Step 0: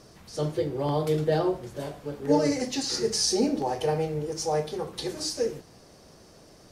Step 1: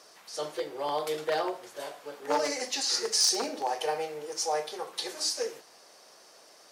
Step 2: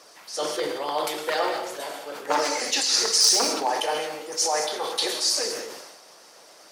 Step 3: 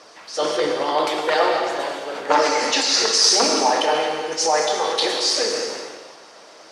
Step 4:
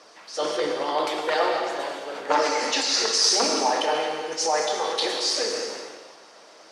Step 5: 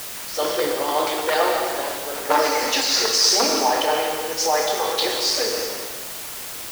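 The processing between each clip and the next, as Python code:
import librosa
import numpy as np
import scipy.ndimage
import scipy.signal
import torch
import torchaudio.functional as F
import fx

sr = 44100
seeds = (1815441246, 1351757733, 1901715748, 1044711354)

y1 = np.minimum(x, 2.0 * 10.0 ** (-18.0 / 20.0) - x)
y1 = scipy.signal.sosfilt(scipy.signal.butter(2, 700.0, 'highpass', fs=sr, output='sos'), y1)
y1 = y1 * librosa.db_to_amplitude(2.0)
y2 = fx.hpss(y1, sr, part='harmonic', gain_db=-12)
y2 = fx.rev_gated(y2, sr, seeds[0], gate_ms=240, shape='flat', drr_db=5.0)
y2 = fx.sustainer(y2, sr, db_per_s=42.0)
y2 = y2 * librosa.db_to_amplitude(8.5)
y3 = fx.air_absorb(y2, sr, metres=87.0)
y3 = fx.rev_gated(y3, sr, seeds[1], gate_ms=400, shape='flat', drr_db=5.5)
y3 = y3 * librosa.db_to_amplitude(6.5)
y4 = scipy.signal.sosfilt(scipy.signal.butter(2, 130.0, 'highpass', fs=sr, output='sos'), y3)
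y4 = y4 * librosa.db_to_amplitude(-4.5)
y5 = fx.quant_dither(y4, sr, seeds[2], bits=6, dither='triangular')
y5 = y5 * librosa.db_to_amplitude(3.0)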